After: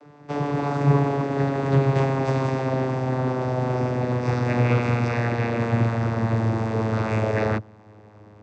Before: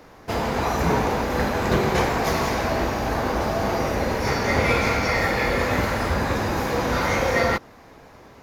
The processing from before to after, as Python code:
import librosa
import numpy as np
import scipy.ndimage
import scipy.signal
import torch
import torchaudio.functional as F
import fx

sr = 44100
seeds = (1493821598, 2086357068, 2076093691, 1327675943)

y = fx.vocoder_glide(x, sr, note=50, semitones=-6)
y = y * librosa.db_to_amplitude(1.5)